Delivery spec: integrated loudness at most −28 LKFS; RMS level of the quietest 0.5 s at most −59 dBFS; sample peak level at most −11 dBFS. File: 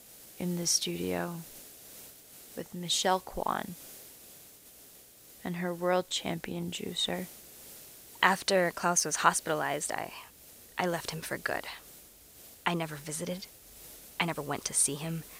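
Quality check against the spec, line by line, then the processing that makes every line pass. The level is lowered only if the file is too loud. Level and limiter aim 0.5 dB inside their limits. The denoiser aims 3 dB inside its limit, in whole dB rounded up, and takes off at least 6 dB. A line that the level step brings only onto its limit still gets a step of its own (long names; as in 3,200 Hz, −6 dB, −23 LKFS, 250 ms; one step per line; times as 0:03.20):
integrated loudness −31.0 LKFS: in spec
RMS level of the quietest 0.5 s −55 dBFS: out of spec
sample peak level −7.5 dBFS: out of spec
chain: broadband denoise 7 dB, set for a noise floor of −55 dBFS
brickwall limiter −11.5 dBFS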